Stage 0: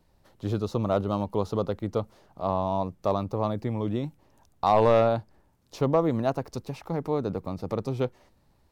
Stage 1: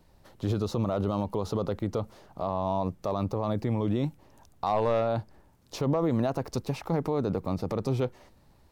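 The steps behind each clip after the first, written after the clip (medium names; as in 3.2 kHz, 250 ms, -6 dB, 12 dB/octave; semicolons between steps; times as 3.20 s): peak limiter -22.5 dBFS, peak gain reduction 11 dB; trim +4.5 dB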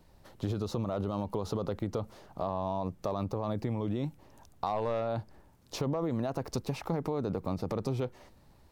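compression, threshold -28 dBFS, peak gain reduction 6.5 dB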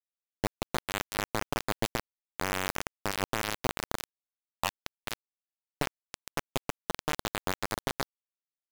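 echo that smears into a reverb 514 ms, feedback 54%, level -13 dB; bit crusher 4-bit; trim +1.5 dB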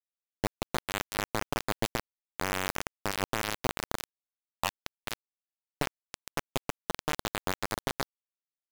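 no audible change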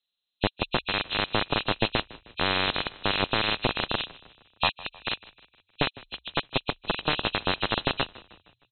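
knee-point frequency compression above 2.4 kHz 4:1; frequency-shifting echo 155 ms, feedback 52%, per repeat -31 Hz, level -20 dB; trim +5.5 dB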